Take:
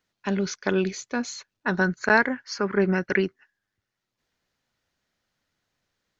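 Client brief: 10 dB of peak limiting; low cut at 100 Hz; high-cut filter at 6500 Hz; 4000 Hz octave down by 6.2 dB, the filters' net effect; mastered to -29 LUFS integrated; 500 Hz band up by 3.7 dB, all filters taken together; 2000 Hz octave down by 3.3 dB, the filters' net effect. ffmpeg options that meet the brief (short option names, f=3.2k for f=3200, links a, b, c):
-af "highpass=100,lowpass=6.5k,equalizer=f=500:t=o:g=5.5,equalizer=f=2k:t=o:g=-4,equalizer=f=4k:t=o:g=-6,volume=-1.5dB,alimiter=limit=-16dB:level=0:latency=1"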